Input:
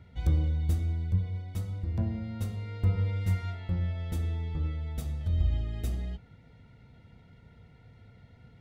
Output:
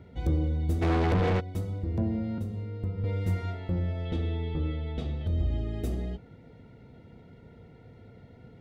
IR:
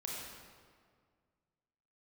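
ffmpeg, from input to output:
-filter_complex "[0:a]equalizer=frequency=380:width=0.65:gain=12,asettb=1/sr,asplit=3[link_01][link_02][link_03];[link_01]atrim=end=2.384[link_04];[link_02]atrim=start=2.38:end=3.04,asetpts=PTS-STARTPTS,afade=type=in:duration=0.004:curve=qsin,afade=type=out:start_time=0.656:duration=0.004:curve=qsin,acrossover=split=310|870[link_05][link_06][link_07];[link_05]acompressor=threshold=-29dB:ratio=4[link_08];[link_06]acompressor=threshold=-49dB:ratio=4[link_09];[link_07]acompressor=threshold=-59dB:ratio=4[link_10];[link_08][link_09][link_10]amix=inputs=3:normalize=0[link_11];[link_03]atrim=start=3.036[link_12];[link_04][link_11]acrossfade=duration=0.004:curve1=hsin:curve2=qsin[link_13];[link_13][link_12]acrossfade=duration=0.004:curve1=qsin:curve2=hsin,asplit=2[link_14][link_15];[link_15]alimiter=limit=-23dB:level=0:latency=1:release=38,volume=-0.5dB[link_16];[link_14][link_16]amix=inputs=2:normalize=0,asplit=3[link_17][link_18][link_19];[link_17]afade=type=out:start_time=0.81:duration=0.02[link_20];[link_18]asplit=2[link_21][link_22];[link_22]highpass=frequency=720:poles=1,volume=40dB,asoftclip=type=tanh:threshold=-11dB[link_23];[link_21][link_23]amix=inputs=2:normalize=0,lowpass=frequency=1800:poles=1,volume=-6dB,afade=type=in:start_time=0.81:duration=0.02,afade=type=out:start_time=1.39:duration=0.02[link_24];[link_19]afade=type=in:start_time=1.39:duration=0.02[link_25];[link_20][link_24][link_25]amix=inputs=3:normalize=0,asettb=1/sr,asplit=3[link_26][link_27][link_28];[link_26]atrim=end=4.054[link_29];[link_27]atrim=start=4.05:end=5.27,asetpts=PTS-STARTPTS,afade=type=in:duration=0.004:curve=qsin,afade=type=out:start_time=1.216:duration=0.004:curve=qsin,lowpass=frequency=3400:width_type=q:width=2.4[link_30];[link_28]atrim=start=5.266[link_31];[link_29][link_30]acrossfade=duration=0.004:curve1=hsin:curve2=qsin[link_32];[link_32][link_31]acrossfade=duration=0.004:curve1=qsin:curve2=hsin,volume=-6.5dB"

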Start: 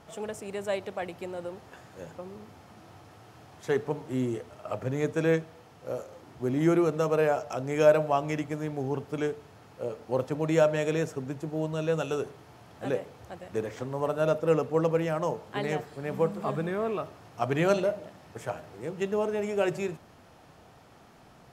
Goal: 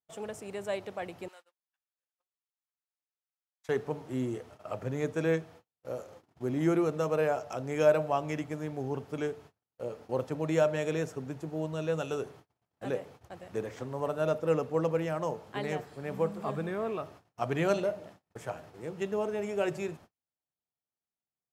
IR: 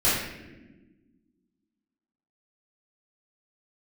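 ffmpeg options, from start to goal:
-filter_complex "[0:a]asettb=1/sr,asplit=3[link_01][link_02][link_03];[link_01]atrim=end=1.284[link_04];[link_02]atrim=start=1.28:end=3.69,asetpts=PTS-STARTPTS,afade=type=in:duration=0.004:curve=qsin,afade=type=out:start_time=2.406:duration=0.004:curve=qsin,highpass=1400[link_05];[link_03]atrim=start=3.686[link_06];[link_04][link_05]acrossfade=duration=0.004:curve1=hsin:curve2=qsin[link_07];[link_07][link_06]acrossfade=duration=0.004:curve1=qsin:curve2=hsin,agate=range=-45dB:threshold=-47dB:ratio=16:detection=peak,volume=-3.5dB"

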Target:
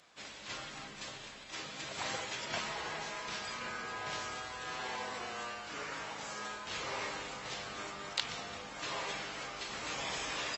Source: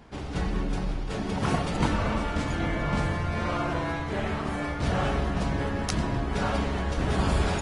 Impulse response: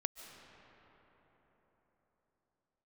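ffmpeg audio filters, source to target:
-filter_complex "[0:a]asetrate=31752,aresample=44100,acrossover=split=4100[link_01][link_02];[link_02]acompressor=threshold=-51dB:ratio=4:attack=1:release=60[link_03];[link_01][link_03]amix=inputs=2:normalize=0,aresample=22050,aresample=44100,aderivative,volume=8.5dB"

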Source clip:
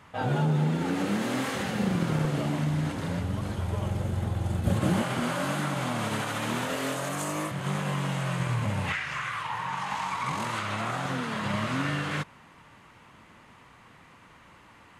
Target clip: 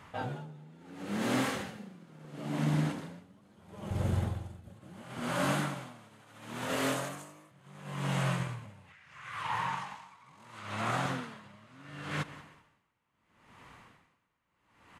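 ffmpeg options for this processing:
ffmpeg -i in.wav -filter_complex "[0:a]asettb=1/sr,asplit=3[link_01][link_02][link_03];[link_01]atrim=end=1.774[link_04];[link_02]atrim=start=1.77:end=3.91,asetpts=PTS-STARTPTS,afade=type=in:duration=0.004:curve=qsin,afade=type=out:start_time=2.136:duration=0.004:curve=qsin,lowshelf=frequency=130:width_type=q:width=1.5:gain=-10.5[link_05];[link_03]atrim=start=3.906[link_06];[link_04][link_05]acrossfade=duration=0.004:curve1=hsin:curve2=qsin[link_07];[link_07][link_06]acrossfade=duration=0.004:curve1=qsin:curve2=hsin,aecho=1:1:184|368|552:0.0944|0.0434|0.02,aeval=exprs='val(0)*pow(10,-28*(0.5-0.5*cos(2*PI*0.73*n/s))/20)':channel_layout=same" out.wav

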